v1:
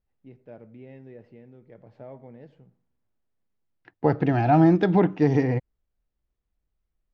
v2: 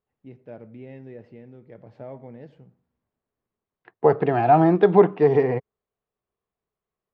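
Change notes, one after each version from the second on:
first voice +4.0 dB; second voice: add cabinet simulation 150–4000 Hz, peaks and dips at 290 Hz -7 dB, 420 Hz +10 dB, 700 Hz +5 dB, 1.1 kHz +9 dB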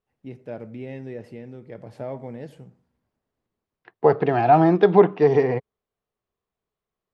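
first voice +5.5 dB; master: remove distance through air 190 m

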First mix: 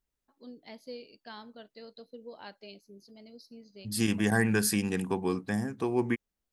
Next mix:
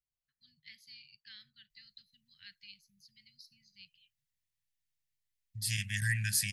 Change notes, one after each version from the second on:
second voice: entry +1.70 s; master: add Chebyshev band-stop 150–1800 Hz, order 4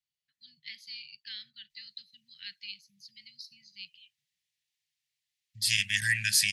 first voice: add peaking EQ 210 Hz +6 dB 1.8 oct; master: add frequency weighting D

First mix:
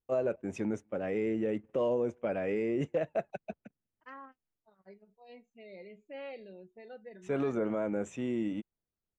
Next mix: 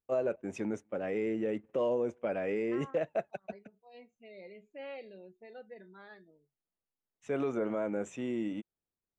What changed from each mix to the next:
second voice: entry -1.35 s; master: add bass shelf 140 Hz -8 dB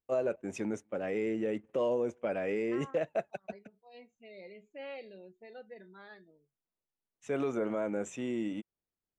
master: add treble shelf 4.3 kHz +6.5 dB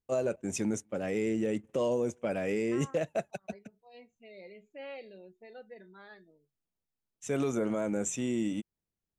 first voice: add tone controls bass +8 dB, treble +15 dB

